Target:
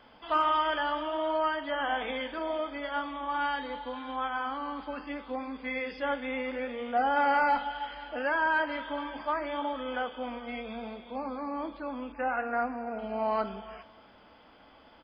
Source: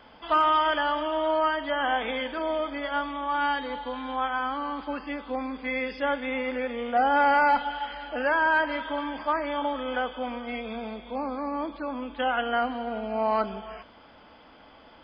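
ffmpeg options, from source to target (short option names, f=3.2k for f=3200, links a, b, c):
-filter_complex "[0:a]flanger=delay=8.4:depth=7.2:regen=-69:speed=0.71:shape=sinusoidal,asettb=1/sr,asplit=3[a][b][c];[a]atrim=end=12.124[d];[b]atrim=start=12.12:end=12.99,asetpts=PTS-STARTPTS,afade=t=in:d=0.004:c=qsin,afade=t=out:st=0.866:d=0.004:c=qsin,asuperstop=centerf=3600:order=20:qfactor=1.8[e];[c]atrim=start=12.986[f];[d][e]acrossfade=d=0.004:c1=hsin:c2=qsin[g];[g][f]acrossfade=d=0.004:c1=qsin:c2=hsin,asplit=2[h][i];[i]adelay=583.1,volume=-30dB,highshelf=f=4k:g=-13.1[j];[h][j]amix=inputs=2:normalize=0"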